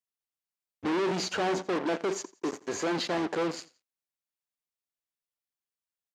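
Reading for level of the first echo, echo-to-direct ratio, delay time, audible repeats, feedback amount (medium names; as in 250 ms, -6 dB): -20.0 dB, -19.5 dB, 86 ms, 2, 31%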